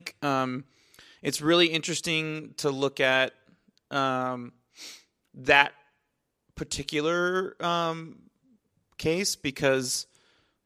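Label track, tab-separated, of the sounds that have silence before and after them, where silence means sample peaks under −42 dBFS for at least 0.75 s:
6.570000	8.130000	sound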